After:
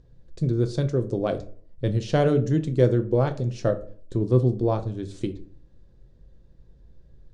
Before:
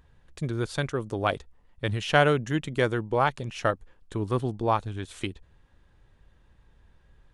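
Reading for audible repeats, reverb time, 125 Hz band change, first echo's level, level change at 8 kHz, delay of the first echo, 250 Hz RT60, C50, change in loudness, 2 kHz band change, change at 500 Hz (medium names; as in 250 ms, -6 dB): no echo, 0.45 s, +7.0 dB, no echo, no reading, no echo, 0.55 s, 15.5 dB, +3.5 dB, -11.0 dB, +4.0 dB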